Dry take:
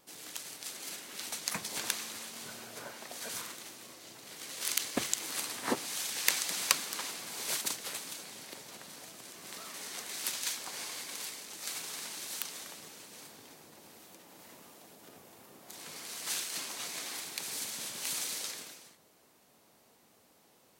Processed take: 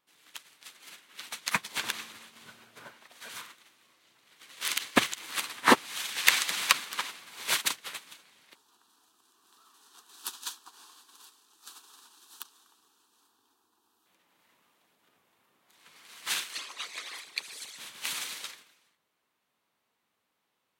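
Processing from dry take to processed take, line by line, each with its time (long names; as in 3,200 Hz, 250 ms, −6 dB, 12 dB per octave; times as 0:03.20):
0:01.83–0:03.01: low-shelf EQ 420 Hz +7.5 dB
0:08.55–0:14.06: phaser with its sweep stopped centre 570 Hz, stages 6
0:16.53–0:17.78: spectral envelope exaggerated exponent 2
whole clip: flat-topped bell 1,900 Hz +8.5 dB 2.3 octaves; boost into a limiter +8.5 dB; expander for the loud parts 2.5 to 1, over −35 dBFS; level +1.5 dB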